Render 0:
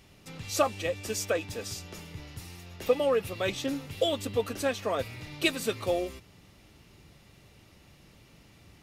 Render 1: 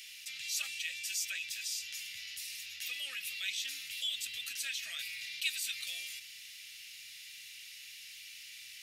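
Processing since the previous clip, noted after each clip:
inverse Chebyshev high-pass filter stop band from 1,100 Hz, stop band 40 dB
envelope flattener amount 50%
level −5.5 dB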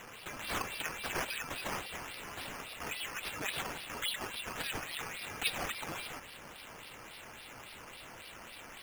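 sample-and-hold swept by an LFO 9×, swing 60% 3.6 Hz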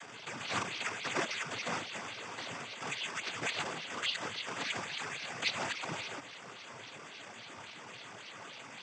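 cochlear-implant simulation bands 16
level +2.5 dB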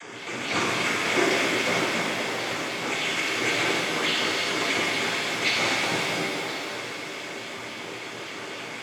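hollow resonant body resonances 360/2,200 Hz, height 10 dB, ringing for 25 ms
on a send: echo through a band-pass that steps 258 ms, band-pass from 230 Hz, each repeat 1.4 octaves, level −2 dB
on the sum: reverb with rising layers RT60 2 s, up +7 semitones, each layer −8 dB, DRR −4.5 dB
level +4 dB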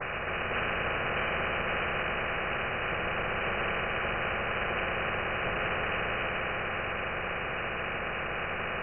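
voice inversion scrambler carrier 2,700 Hz
phaser with its sweep stopped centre 1,400 Hz, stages 8
every bin compressed towards the loudest bin 4 to 1
level −3 dB

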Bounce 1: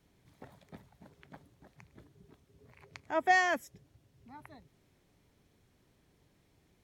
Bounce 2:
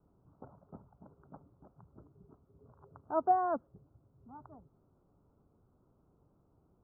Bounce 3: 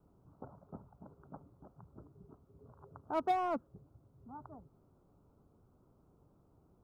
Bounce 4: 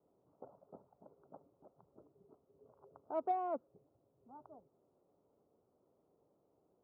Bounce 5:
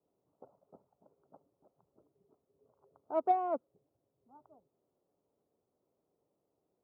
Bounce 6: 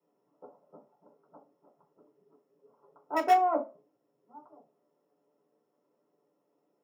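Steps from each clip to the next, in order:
Butterworth low-pass 1,400 Hz 96 dB per octave
in parallel at −11 dB: wave folding −29.5 dBFS; on the sum: dynamic equaliser 700 Hz, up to −5 dB, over −42 dBFS, Q 1.3
resonant band-pass 540 Hz, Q 1.7
expander for the loud parts 1.5 to 1, over −58 dBFS; level +7.5 dB
in parallel at −7.5 dB: wrap-around overflow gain 24 dB; on the sum: convolution reverb RT60 0.30 s, pre-delay 3 ms, DRR −4 dB; level −8.5 dB

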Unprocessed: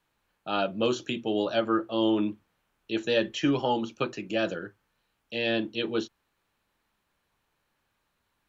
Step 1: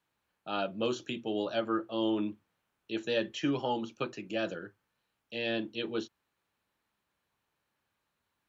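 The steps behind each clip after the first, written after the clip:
high-pass filter 63 Hz
level −5.5 dB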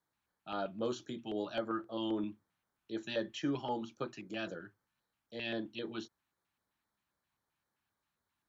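auto-filter notch square 3.8 Hz 480–2,700 Hz
level −4 dB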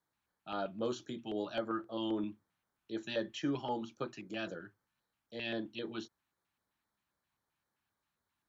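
no processing that can be heard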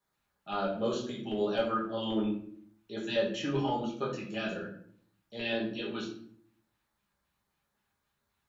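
rectangular room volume 78 cubic metres, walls mixed, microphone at 1.3 metres

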